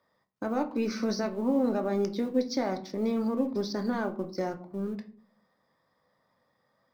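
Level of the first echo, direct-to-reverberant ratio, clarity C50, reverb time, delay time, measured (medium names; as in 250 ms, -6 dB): no echo, 5.5 dB, 15.0 dB, 0.50 s, no echo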